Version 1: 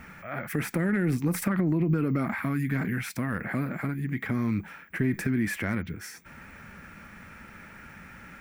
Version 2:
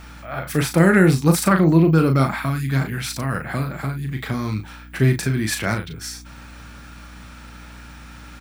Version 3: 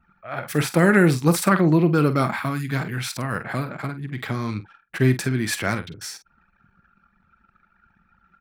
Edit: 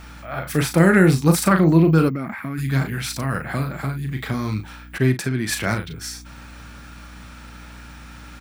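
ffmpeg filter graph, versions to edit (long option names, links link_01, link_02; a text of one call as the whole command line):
ffmpeg -i take0.wav -i take1.wav -i take2.wav -filter_complex "[1:a]asplit=3[link_01][link_02][link_03];[link_01]atrim=end=2.1[link_04];[0:a]atrim=start=2.08:end=2.59[link_05];[link_02]atrim=start=2.57:end=4.982[link_06];[2:a]atrim=start=4.978:end=5.492[link_07];[link_03]atrim=start=5.488[link_08];[link_04][link_05]acrossfade=duration=0.02:curve1=tri:curve2=tri[link_09];[link_09][link_06]acrossfade=duration=0.02:curve1=tri:curve2=tri[link_10];[link_10][link_07]acrossfade=duration=0.004:curve1=hsin:curve2=hsin[link_11];[link_11][link_08]acrossfade=duration=0.004:curve1=hsin:curve2=hsin" out.wav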